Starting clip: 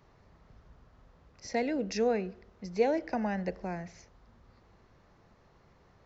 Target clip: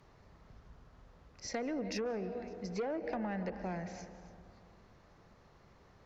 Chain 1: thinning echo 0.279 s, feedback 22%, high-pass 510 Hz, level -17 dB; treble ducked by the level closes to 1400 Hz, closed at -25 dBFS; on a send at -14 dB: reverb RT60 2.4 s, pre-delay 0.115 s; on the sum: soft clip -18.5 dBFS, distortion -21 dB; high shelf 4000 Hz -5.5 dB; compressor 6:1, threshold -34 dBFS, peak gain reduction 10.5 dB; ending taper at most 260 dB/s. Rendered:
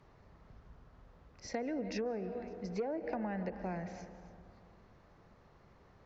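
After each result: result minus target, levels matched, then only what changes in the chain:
soft clip: distortion -8 dB; 8000 Hz band -5.0 dB
change: soft clip -25 dBFS, distortion -13 dB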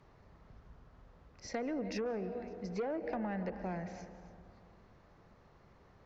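8000 Hz band -5.5 dB
change: high shelf 4000 Hz +2.5 dB

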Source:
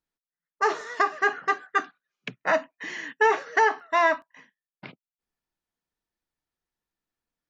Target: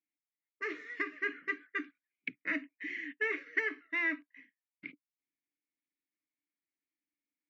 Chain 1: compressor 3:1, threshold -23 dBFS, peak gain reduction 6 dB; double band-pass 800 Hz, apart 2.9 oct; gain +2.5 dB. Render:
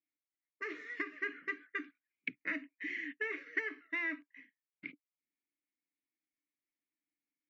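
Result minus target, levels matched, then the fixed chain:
compressor: peak gain reduction +6 dB
double band-pass 800 Hz, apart 2.9 oct; gain +2.5 dB

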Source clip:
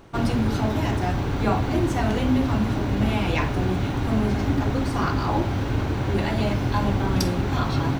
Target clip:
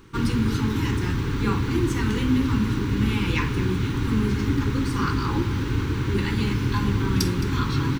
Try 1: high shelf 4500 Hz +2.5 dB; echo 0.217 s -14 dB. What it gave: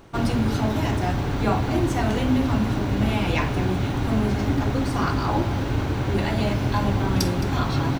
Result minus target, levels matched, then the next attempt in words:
500 Hz band +3.5 dB
Butterworth band-stop 660 Hz, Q 1.2; high shelf 4500 Hz +2.5 dB; echo 0.217 s -14 dB

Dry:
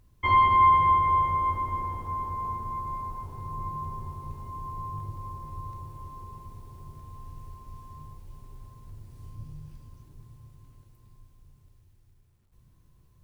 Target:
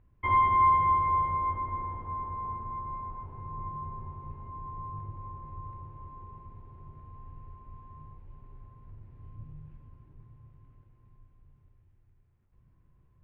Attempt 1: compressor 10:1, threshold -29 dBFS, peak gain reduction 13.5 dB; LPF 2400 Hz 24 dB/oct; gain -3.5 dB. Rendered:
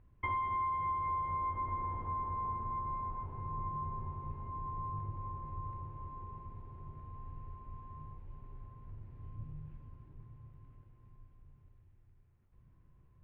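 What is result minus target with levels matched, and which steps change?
compressor: peak gain reduction +13.5 dB
remove: compressor 10:1, threshold -29 dBFS, peak gain reduction 13.5 dB

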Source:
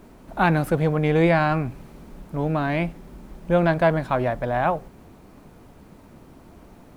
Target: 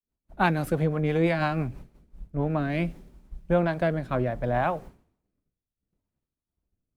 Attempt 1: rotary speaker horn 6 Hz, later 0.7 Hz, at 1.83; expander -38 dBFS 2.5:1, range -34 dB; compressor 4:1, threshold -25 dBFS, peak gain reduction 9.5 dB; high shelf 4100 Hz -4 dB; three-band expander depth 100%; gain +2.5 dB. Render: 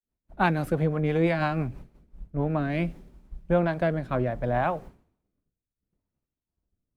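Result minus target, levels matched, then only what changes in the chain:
8000 Hz band -4.5 dB
remove: high shelf 4100 Hz -4 dB

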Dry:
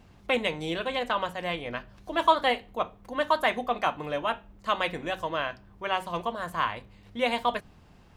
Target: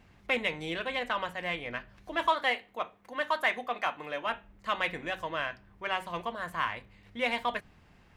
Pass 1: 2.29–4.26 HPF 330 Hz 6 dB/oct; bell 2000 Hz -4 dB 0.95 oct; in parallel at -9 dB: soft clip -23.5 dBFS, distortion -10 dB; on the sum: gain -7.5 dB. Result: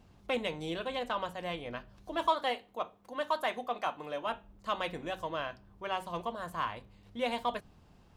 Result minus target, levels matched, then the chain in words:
2000 Hz band -5.5 dB
2.29–4.26 HPF 330 Hz 6 dB/oct; bell 2000 Hz +7.5 dB 0.95 oct; in parallel at -9 dB: soft clip -23.5 dBFS, distortion -7 dB; on the sum: gain -7.5 dB

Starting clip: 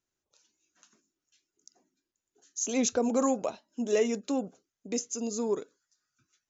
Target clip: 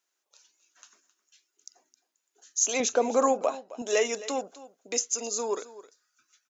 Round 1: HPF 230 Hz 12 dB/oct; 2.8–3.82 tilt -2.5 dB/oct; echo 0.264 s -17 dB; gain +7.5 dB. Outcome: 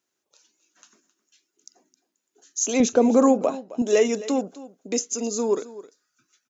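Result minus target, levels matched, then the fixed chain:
250 Hz band +8.5 dB
HPF 640 Hz 12 dB/oct; 2.8–3.82 tilt -2.5 dB/oct; echo 0.264 s -17 dB; gain +7.5 dB

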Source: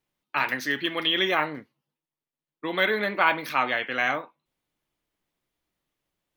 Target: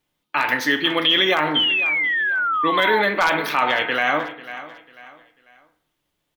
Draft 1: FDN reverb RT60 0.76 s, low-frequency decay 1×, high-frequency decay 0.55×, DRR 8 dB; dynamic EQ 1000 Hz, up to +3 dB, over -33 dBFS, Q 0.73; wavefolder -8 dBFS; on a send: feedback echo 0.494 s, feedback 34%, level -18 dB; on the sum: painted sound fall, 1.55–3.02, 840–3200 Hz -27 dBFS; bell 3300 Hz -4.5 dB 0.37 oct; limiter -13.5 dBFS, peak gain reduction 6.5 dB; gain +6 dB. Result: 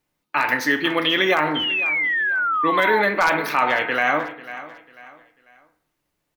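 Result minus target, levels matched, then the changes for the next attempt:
4000 Hz band -4.5 dB
change: bell 3300 Hz +4 dB 0.37 oct

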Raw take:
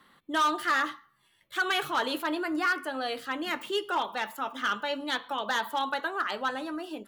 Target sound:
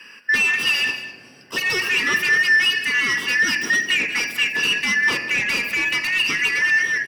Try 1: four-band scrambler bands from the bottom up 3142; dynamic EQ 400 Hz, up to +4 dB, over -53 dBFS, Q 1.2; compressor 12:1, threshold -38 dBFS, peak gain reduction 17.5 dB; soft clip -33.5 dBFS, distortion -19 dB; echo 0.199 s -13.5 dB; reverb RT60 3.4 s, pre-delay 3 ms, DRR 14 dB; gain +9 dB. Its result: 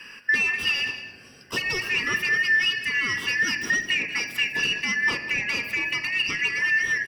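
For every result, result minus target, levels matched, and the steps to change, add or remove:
compressor: peak gain reduction +9 dB; 125 Hz band +4.5 dB
change: compressor 12:1, threshold -28.5 dBFS, peak gain reduction 8.5 dB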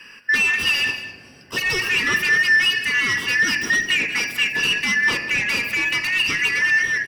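125 Hz band +4.0 dB
add after dynamic EQ: HPF 170 Hz 12 dB/oct

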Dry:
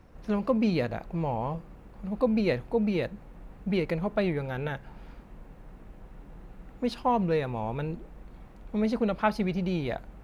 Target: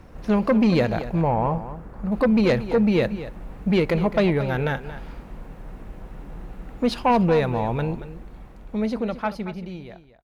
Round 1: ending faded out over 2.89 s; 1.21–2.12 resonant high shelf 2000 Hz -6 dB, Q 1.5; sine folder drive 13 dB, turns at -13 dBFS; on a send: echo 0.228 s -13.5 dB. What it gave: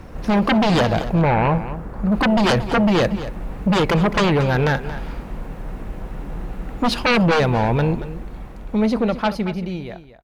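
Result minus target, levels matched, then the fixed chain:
sine folder: distortion +15 dB
ending faded out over 2.89 s; 1.21–2.12 resonant high shelf 2000 Hz -6 dB, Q 1.5; sine folder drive 5 dB, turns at -13 dBFS; on a send: echo 0.228 s -13.5 dB

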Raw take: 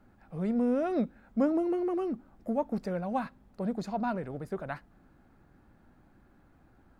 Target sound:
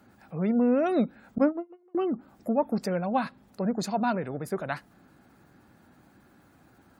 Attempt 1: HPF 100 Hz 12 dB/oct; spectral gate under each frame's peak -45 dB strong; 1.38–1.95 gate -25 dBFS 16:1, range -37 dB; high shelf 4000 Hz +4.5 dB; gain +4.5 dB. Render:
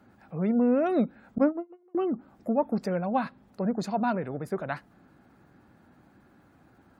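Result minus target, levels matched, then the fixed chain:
8000 Hz band -7.0 dB
HPF 100 Hz 12 dB/oct; spectral gate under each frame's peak -45 dB strong; 1.38–1.95 gate -25 dBFS 16:1, range -37 dB; high shelf 4000 Hz +14 dB; gain +4.5 dB

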